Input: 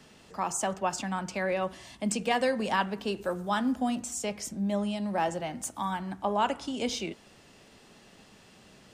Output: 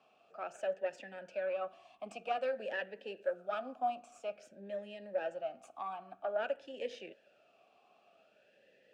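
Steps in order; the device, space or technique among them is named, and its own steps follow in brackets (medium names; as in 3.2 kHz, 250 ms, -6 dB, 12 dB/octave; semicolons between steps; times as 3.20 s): talk box (valve stage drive 20 dB, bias 0.8; talking filter a-e 0.51 Hz); 2.38–4.05 s: high-pass 120 Hz; trim +6 dB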